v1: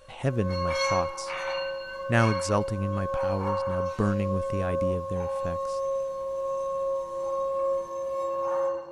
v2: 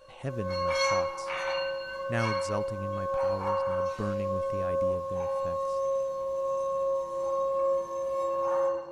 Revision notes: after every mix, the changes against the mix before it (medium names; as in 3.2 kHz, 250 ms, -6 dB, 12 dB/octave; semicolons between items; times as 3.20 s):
speech -8.0 dB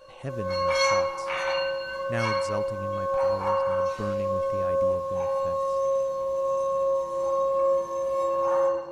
background +4.0 dB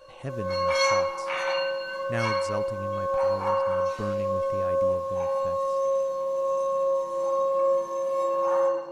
background: add high-pass 160 Hz 24 dB/octave